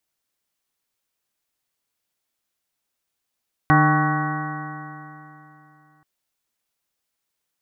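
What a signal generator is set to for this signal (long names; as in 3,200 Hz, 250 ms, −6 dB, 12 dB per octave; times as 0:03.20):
stiff-string partials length 2.33 s, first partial 150 Hz, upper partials −3/−19/−17/−3/−18/−2/−14/−5.5/−18/−7.5 dB, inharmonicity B 0.0028, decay 3.08 s, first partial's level −15.5 dB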